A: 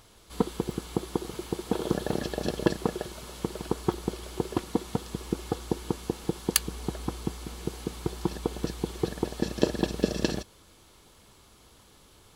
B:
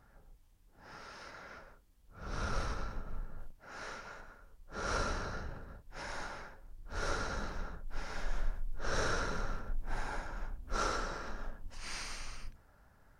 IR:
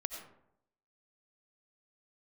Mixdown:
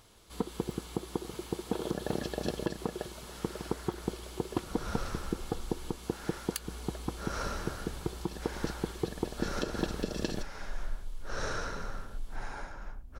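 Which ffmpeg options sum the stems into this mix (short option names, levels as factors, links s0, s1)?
-filter_complex "[0:a]volume=0.668[s0];[1:a]adelay=2450,volume=0.841[s1];[s0][s1]amix=inputs=2:normalize=0,alimiter=limit=0.133:level=0:latency=1:release=155"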